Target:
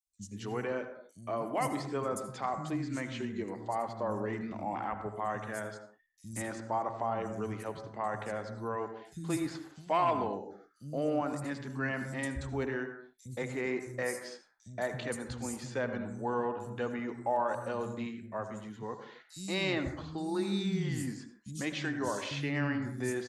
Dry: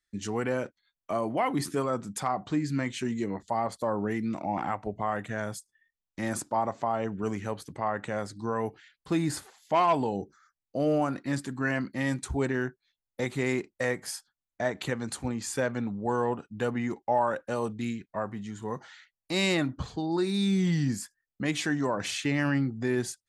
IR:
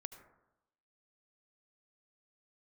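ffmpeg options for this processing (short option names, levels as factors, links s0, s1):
-filter_complex "[0:a]asettb=1/sr,asplit=3[s0][s1][s2];[s0]atrim=end=13.244[s3];[s1]atrim=start=13.24:end=14.01,asetpts=PTS-STARTPTS,afade=t=in:d=0.004:c=qsin,afade=t=out:st=0.766:d=0.004:c=qsin,equalizer=f=3500:w=3.1:g=-6.5[s4];[s2]atrim=start=14.006[s5];[s3][s4]acrossfade=d=0.004:c1=hsin:c2=qsin[s6];[s6][s5]acrossfade=d=0.004:c1=qsin:c2=hsin,acrossover=split=200|5600[s7][s8][s9];[s7]adelay=60[s10];[s8]adelay=180[s11];[s10][s11][s9]amix=inputs=3:normalize=0[s12];[1:a]atrim=start_sample=2205,afade=t=out:st=0.33:d=0.01,atrim=end_sample=14994[s13];[s12][s13]afir=irnorm=-1:irlink=0"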